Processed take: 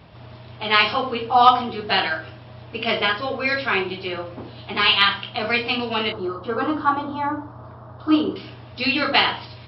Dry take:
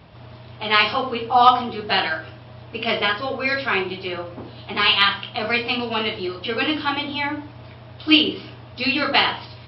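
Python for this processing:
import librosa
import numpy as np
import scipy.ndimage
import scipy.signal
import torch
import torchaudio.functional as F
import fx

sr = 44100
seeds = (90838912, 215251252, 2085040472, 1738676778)

y = fx.high_shelf_res(x, sr, hz=1700.0, db=-11.5, q=3.0, at=(6.12, 8.36))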